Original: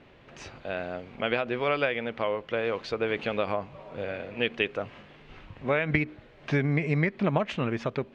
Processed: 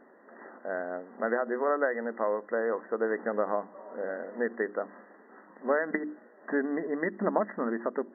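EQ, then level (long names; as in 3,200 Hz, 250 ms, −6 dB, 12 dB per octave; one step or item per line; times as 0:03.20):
linear-phase brick-wall band-pass 190–2,000 Hz
mains-hum notches 50/100/150/200/250/300/350 Hz
0.0 dB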